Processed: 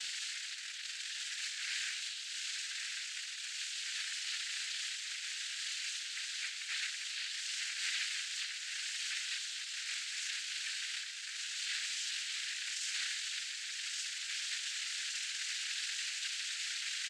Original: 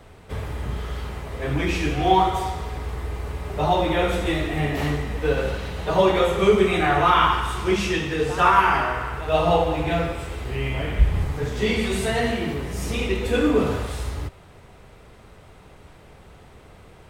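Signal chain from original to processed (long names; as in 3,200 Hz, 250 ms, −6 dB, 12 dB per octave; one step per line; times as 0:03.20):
linear delta modulator 64 kbit/s, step −20 dBFS
downward compressor, threshold −22 dBFS, peak gain reduction 11.5 dB
linear-phase brick-wall high-pass 2,200 Hz
repeating echo 1,170 ms, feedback 57%, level −7 dB
rectangular room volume 550 cubic metres, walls furnished, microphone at 2.5 metres
cochlear-implant simulation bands 8
level −7.5 dB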